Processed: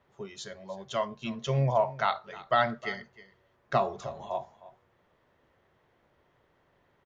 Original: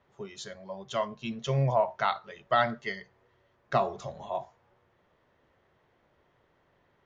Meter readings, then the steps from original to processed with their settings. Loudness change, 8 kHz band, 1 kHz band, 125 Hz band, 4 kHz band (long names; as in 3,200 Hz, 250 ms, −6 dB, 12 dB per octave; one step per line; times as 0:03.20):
0.0 dB, can't be measured, 0.0 dB, 0.0 dB, 0.0 dB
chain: single-tap delay 311 ms −18.5 dB